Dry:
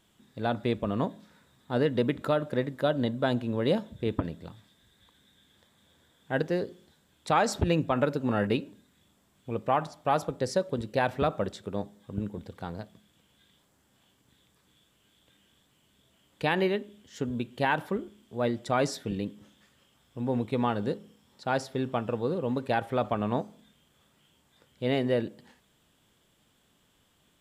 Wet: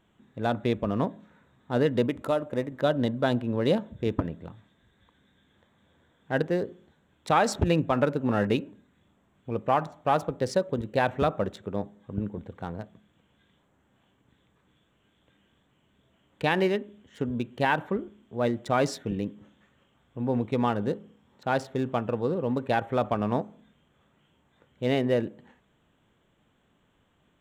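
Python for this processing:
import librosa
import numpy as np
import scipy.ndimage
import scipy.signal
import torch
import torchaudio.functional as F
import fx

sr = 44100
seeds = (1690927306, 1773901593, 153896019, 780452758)

y = fx.wiener(x, sr, points=9)
y = fx.graphic_eq_15(y, sr, hz=(160, 400, 1600, 4000, 10000), db=(-8, -3, -6, -4, 4), at=(2.06, 2.72))
y = y * 10.0 ** (2.0 / 20.0)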